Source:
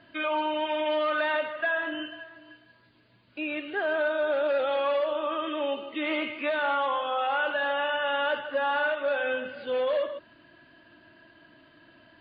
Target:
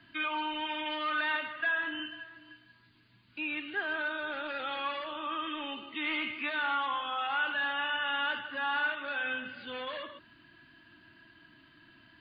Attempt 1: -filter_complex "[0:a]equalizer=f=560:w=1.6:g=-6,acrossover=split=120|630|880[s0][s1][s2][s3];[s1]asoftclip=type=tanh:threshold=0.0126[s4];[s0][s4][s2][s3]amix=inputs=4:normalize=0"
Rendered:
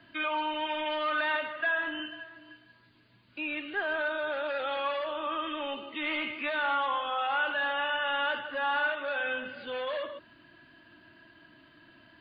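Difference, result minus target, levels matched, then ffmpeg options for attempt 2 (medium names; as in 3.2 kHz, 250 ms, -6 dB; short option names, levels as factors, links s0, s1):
500 Hz band +6.5 dB
-filter_complex "[0:a]equalizer=f=560:w=1.6:g=-17,acrossover=split=120|630|880[s0][s1][s2][s3];[s1]asoftclip=type=tanh:threshold=0.0126[s4];[s0][s4][s2][s3]amix=inputs=4:normalize=0"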